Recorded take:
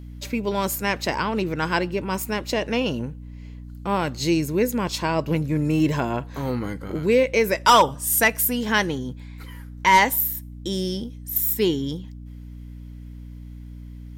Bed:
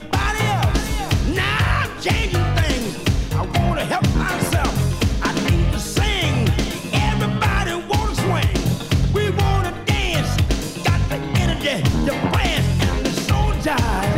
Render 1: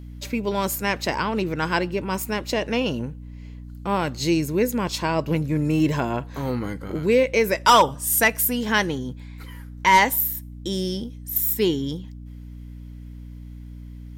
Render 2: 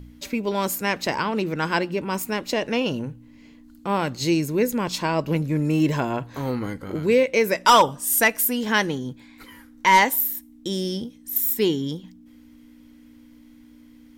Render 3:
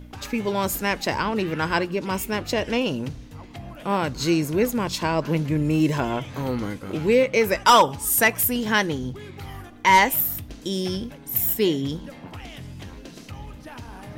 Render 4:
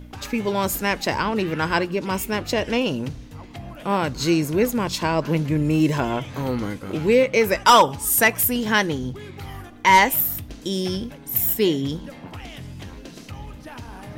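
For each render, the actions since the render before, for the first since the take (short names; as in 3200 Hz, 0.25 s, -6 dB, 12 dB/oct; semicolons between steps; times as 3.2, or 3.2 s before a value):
nothing audible
de-hum 60 Hz, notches 3
add bed -20.5 dB
gain +1.5 dB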